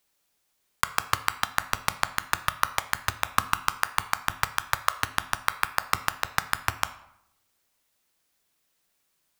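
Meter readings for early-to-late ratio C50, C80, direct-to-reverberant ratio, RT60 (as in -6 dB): 15.5 dB, 18.0 dB, 11.5 dB, 0.80 s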